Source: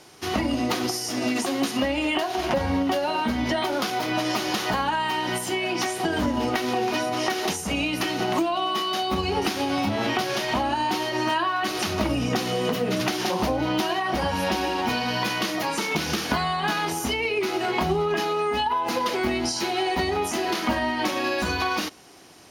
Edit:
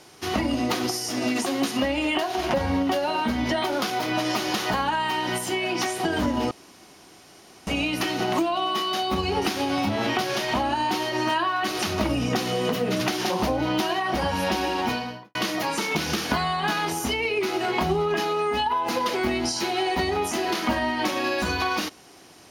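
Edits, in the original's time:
6.51–7.67 room tone
14.83–15.35 studio fade out

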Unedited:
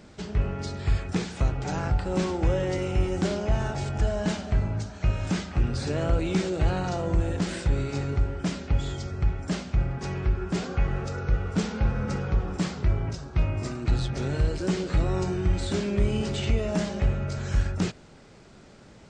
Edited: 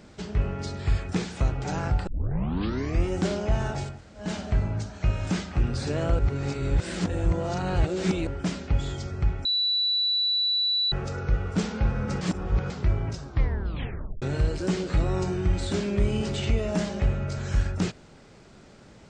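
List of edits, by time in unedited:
2.07 tape start 1.00 s
3.9–4.26 room tone, crossfade 0.24 s
6.19–8.27 reverse
9.45–10.92 bleep 3950 Hz -21.5 dBFS
12.21–12.7 reverse
13.26 tape stop 0.96 s

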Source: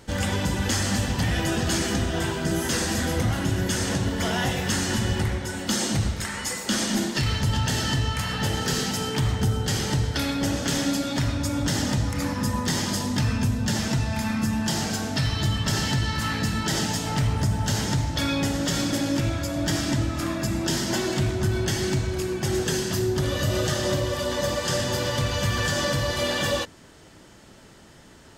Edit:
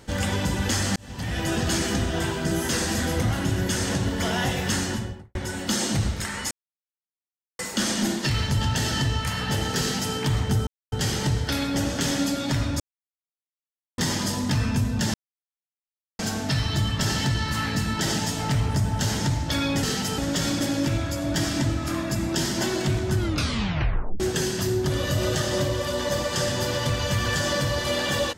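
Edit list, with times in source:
0.96–1.54 fade in
4.74–5.35 studio fade out
6.51 insert silence 1.08 s
8.72–9.07 copy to 18.5
9.59 insert silence 0.25 s
11.47–12.65 mute
13.81–14.86 mute
21.49 tape stop 1.03 s

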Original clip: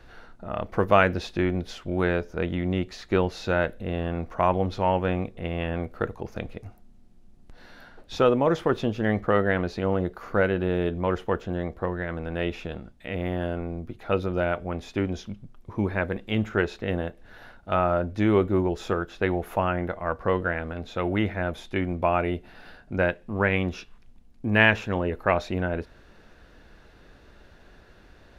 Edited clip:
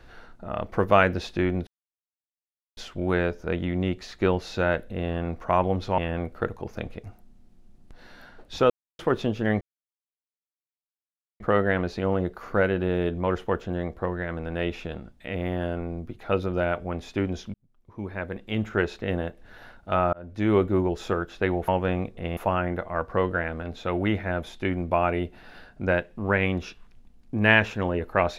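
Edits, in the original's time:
1.67 insert silence 1.10 s
4.88–5.57 move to 19.48
8.29–8.58 mute
9.2 insert silence 1.79 s
15.34–16.64 fade in
17.93–18.33 fade in

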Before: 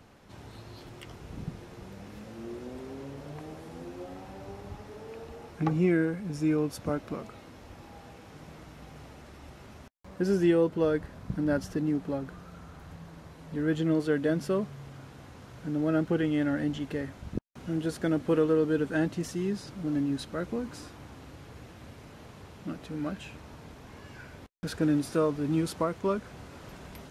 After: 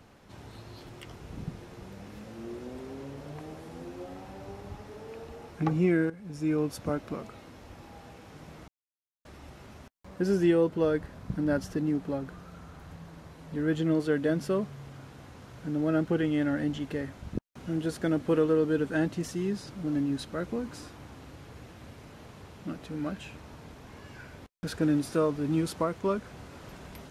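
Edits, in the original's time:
6.1–6.61 fade in, from -13.5 dB
8.68–9.25 mute

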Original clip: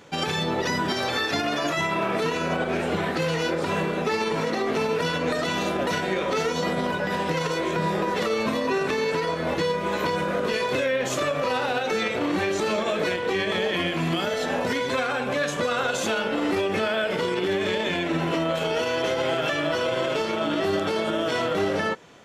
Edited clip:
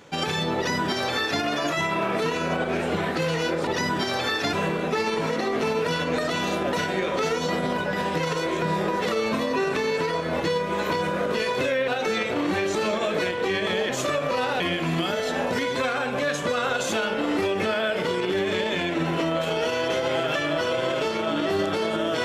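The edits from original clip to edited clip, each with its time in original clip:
0.56–1.42 copy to 3.67
11.02–11.73 move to 13.74

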